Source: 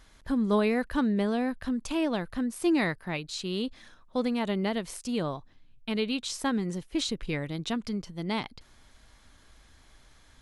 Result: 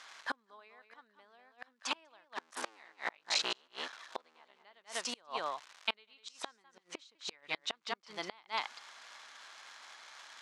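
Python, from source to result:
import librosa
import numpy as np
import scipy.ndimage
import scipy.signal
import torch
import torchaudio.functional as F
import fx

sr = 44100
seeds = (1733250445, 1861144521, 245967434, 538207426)

y = fx.cycle_switch(x, sr, every=3, mode='muted', at=(2.33, 4.63))
y = fx.vibrato(y, sr, rate_hz=11.0, depth_cents=5.5)
y = y + 10.0 ** (-8.0 / 20.0) * np.pad(y, (int(197 * sr / 1000.0), 0))[:len(y)]
y = fx.dmg_crackle(y, sr, seeds[0], per_s=310.0, level_db=-45.0)
y = fx.gate_flip(y, sr, shuts_db=-22.0, range_db=-33)
y = scipy.signal.sosfilt(scipy.signal.cheby1(2, 1.0, [950.0, 6600.0], 'bandpass', fs=sr, output='sos'), y)
y = fx.high_shelf(y, sr, hz=5500.0, db=-7.5)
y = y * 10.0 ** (9.5 / 20.0)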